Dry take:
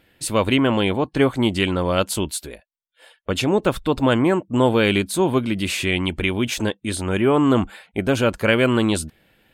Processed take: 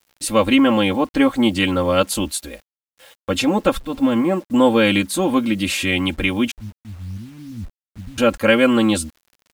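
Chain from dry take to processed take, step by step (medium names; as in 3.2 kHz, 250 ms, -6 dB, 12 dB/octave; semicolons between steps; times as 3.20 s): 3.79–4.50 s: harmonic-percussive split percussive -11 dB; 6.51–8.18 s: inverse Chebyshev low-pass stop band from 850 Hz, stop band 80 dB; comb 3.7 ms, depth 86%; bit crusher 8-bit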